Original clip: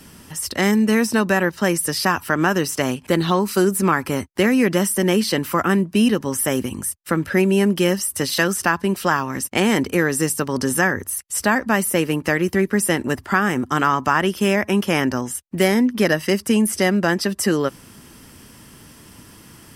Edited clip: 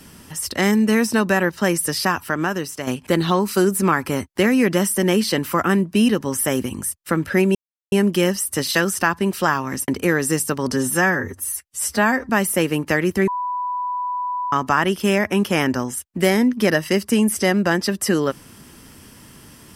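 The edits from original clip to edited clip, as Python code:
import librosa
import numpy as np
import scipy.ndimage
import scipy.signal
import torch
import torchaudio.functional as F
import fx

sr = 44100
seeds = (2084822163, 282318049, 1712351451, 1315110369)

y = fx.edit(x, sr, fx.fade_out_to(start_s=1.92, length_s=0.95, floor_db=-9.0),
    fx.insert_silence(at_s=7.55, length_s=0.37),
    fx.cut(start_s=9.51, length_s=0.27),
    fx.stretch_span(start_s=10.62, length_s=1.05, factor=1.5),
    fx.bleep(start_s=12.65, length_s=1.25, hz=990.0, db=-21.5), tone=tone)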